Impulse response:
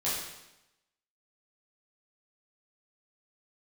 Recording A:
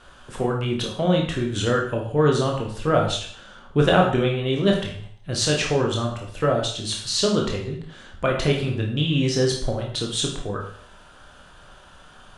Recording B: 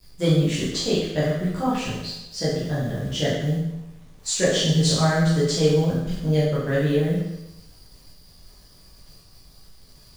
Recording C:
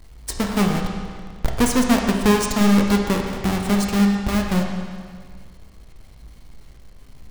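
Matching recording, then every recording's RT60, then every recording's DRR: B; 0.55, 0.90, 1.9 s; -0.5, -9.5, 1.5 dB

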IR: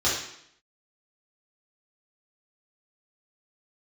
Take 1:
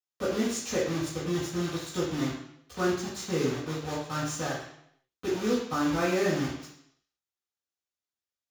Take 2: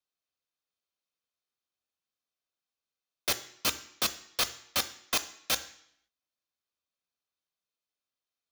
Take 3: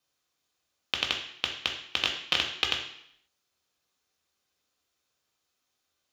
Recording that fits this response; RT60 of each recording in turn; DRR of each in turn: 1; 0.70, 0.70, 0.70 s; -8.5, 10.5, 1.0 dB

